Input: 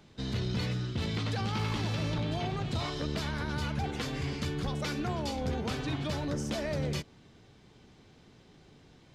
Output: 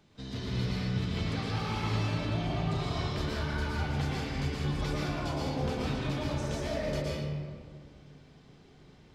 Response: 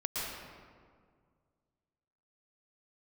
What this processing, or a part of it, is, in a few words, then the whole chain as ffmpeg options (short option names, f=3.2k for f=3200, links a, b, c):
stairwell: -filter_complex "[1:a]atrim=start_sample=2205[a];[0:a][a]afir=irnorm=-1:irlink=0,volume=-4.5dB"